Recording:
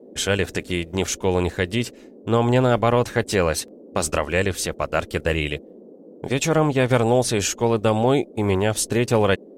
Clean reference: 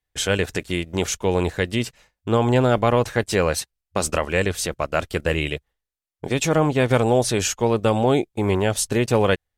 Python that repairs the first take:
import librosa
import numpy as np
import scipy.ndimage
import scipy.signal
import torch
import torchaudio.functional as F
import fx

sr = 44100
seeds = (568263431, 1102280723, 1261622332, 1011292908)

y = fx.fix_interpolate(x, sr, at_s=(1.07, 3.68, 4.02), length_ms=2.4)
y = fx.noise_reduce(y, sr, print_start_s=5.61, print_end_s=6.11, reduce_db=30.0)